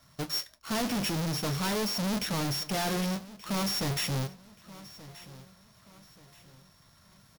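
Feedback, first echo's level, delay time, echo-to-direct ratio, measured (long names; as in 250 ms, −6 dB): 40%, −18.5 dB, 1,179 ms, −18.0 dB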